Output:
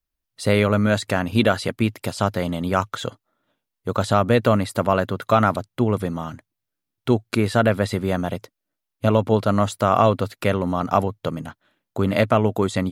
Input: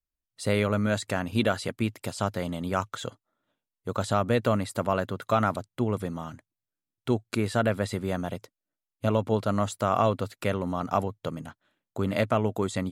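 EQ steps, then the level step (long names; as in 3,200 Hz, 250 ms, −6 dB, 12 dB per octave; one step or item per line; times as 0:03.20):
parametric band 7,700 Hz −4.5 dB 0.57 octaves
+7.0 dB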